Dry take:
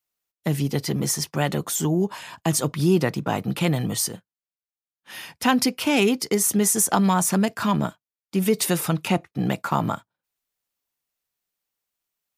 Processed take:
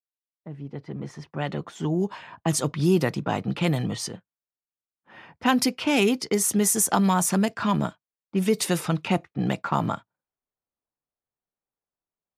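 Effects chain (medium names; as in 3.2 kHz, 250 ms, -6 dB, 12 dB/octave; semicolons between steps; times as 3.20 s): fade-in on the opening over 2.31 s; level-controlled noise filter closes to 980 Hz, open at -16.5 dBFS; trim -1.5 dB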